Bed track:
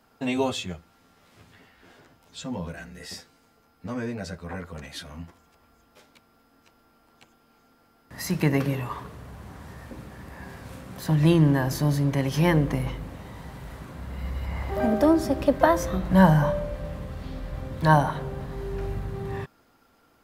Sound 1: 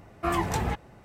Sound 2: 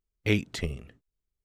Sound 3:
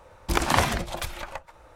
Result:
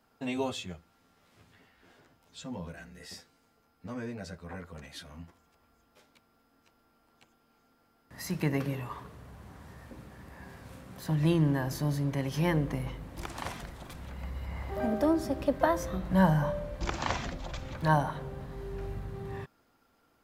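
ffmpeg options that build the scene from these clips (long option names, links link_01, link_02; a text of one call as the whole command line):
ffmpeg -i bed.wav -i cue0.wav -i cue1.wav -i cue2.wav -filter_complex "[3:a]asplit=2[link_01][link_02];[0:a]volume=-7dB[link_03];[link_02]aresample=16000,aresample=44100[link_04];[link_01]atrim=end=1.75,asetpts=PTS-STARTPTS,volume=-17dB,afade=type=in:duration=0.004:curve=hsin,afade=type=out:start_time=1.746:duration=0.004:curve=hsin,adelay=12880[link_05];[link_04]atrim=end=1.75,asetpts=PTS-STARTPTS,volume=-10.5dB,afade=type=in:duration=0.004:curve=hsin,afade=type=out:start_time=1.746:duration=0.004:curve=hsin,adelay=728532S[link_06];[link_03][link_05][link_06]amix=inputs=3:normalize=0" out.wav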